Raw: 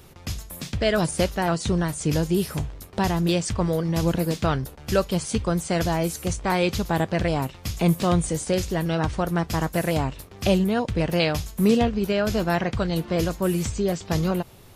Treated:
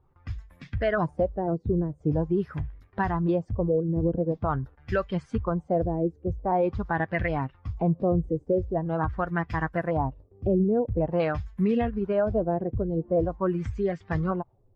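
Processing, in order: per-bin expansion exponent 1.5; LFO low-pass sine 0.45 Hz 410–2000 Hz; limiter -16 dBFS, peak gain reduction 6.5 dB

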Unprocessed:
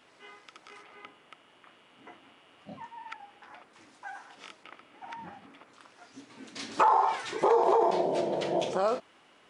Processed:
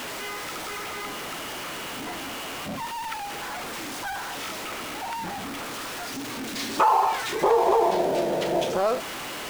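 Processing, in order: zero-crossing step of -31 dBFS; gain +2 dB

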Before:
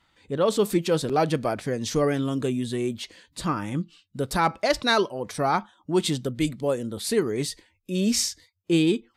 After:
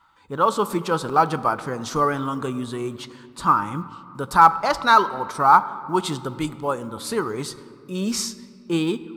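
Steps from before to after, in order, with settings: band shelf 1100 Hz +14.5 dB 1 oct; companded quantiser 8-bit; on a send: reverb RT60 2.5 s, pre-delay 6 ms, DRR 14 dB; on the sum: gain -2 dB

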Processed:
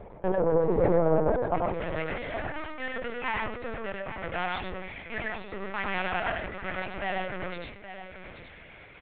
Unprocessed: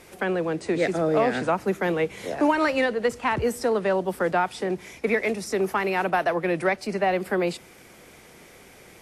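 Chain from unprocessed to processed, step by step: tilt -4 dB/oct; compressor 2:1, threshold -21 dBFS, peak gain reduction 5.5 dB; limiter -17 dBFS, peak gain reduction 6 dB; soft clip -23 dBFS, distortion -14 dB; step gate "x..x.xxxxxxxxxx." 188 bpm -60 dB; band-pass 670 Hz, Q 1.3, from 1.55 s 2500 Hz; echo 0.823 s -11.5 dB; reverb RT60 0.30 s, pre-delay 89 ms, DRR 0.5 dB; LPC vocoder at 8 kHz pitch kept; sustainer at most 59 dB/s; gain +7.5 dB

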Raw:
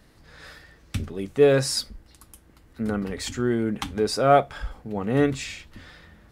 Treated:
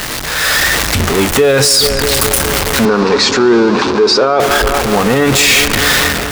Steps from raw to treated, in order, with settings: zero-crossing step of -26.5 dBFS; low shelf 470 Hz -11 dB; AGC gain up to 7.5 dB; 2.85–4.4 speaker cabinet 180–5200 Hz, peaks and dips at 400 Hz +7 dB, 710 Hz -5 dB, 1000 Hz +7 dB, 2000 Hz -8 dB, 3100 Hz -8 dB; darkening echo 0.21 s, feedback 79%, low-pass 3300 Hz, level -15 dB; maximiser +16 dB; gain -1 dB

